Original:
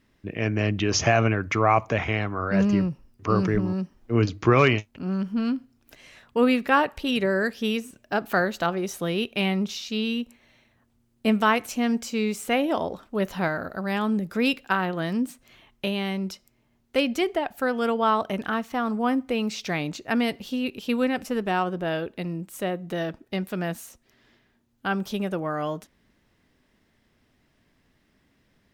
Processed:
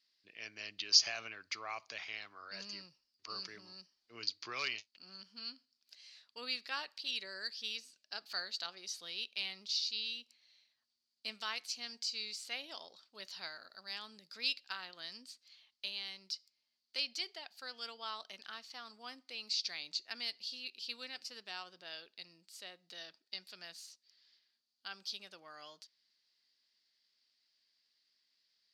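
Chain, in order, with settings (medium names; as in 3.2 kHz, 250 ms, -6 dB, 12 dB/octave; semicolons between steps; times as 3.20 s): band-pass filter 4.6 kHz, Q 8.6; trim +8.5 dB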